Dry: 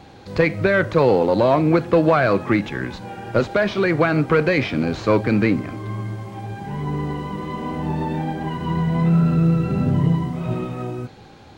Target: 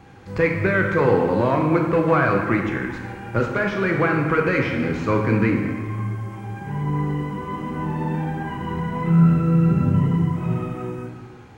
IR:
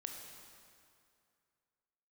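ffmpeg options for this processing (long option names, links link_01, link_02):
-filter_complex "[0:a]equalizer=frequency=100:width_type=o:width=0.67:gain=4,equalizer=frequency=630:width_type=o:width=0.67:gain=-7,equalizer=frequency=4000:width_type=o:width=0.67:gain=-10,acrossover=split=1900[link_01][link_02];[link_01]crystalizer=i=6:c=0[link_03];[link_03][link_02]amix=inputs=2:normalize=0[link_04];[1:a]atrim=start_sample=2205,asetrate=74970,aresample=44100[link_05];[link_04][link_05]afir=irnorm=-1:irlink=0,volume=6dB"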